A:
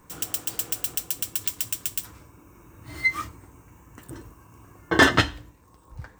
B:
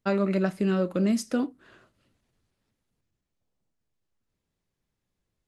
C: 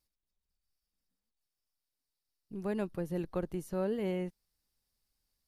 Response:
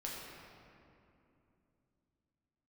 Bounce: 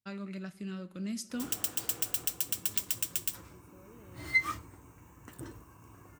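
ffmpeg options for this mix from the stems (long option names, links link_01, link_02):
-filter_complex "[0:a]adelay=1300,volume=-4dB[link_01];[1:a]equalizer=frequency=560:width_type=o:width=2.6:gain=-14.5,volume=-0.5dB,afade=type=in:start_time=0.96:duration=0.69:silence=0.398107,asplit=2[link_02][link_03];[link_03]volume=-18.5dB[link_04];[2:a]alimiter=level_in=4.5dB:limit=-24dB:level=0:latency=1,volume=-4.5dB,volume=-20dB[link_05];[3:a]atrim=start_sample=2205[link_06];[link_04][link_06]afir=irnorm=-1:irlink=0[link_07];[link_01][link_02][link_05][link_07]amix=inputs=4:normalize=0,highpass=58"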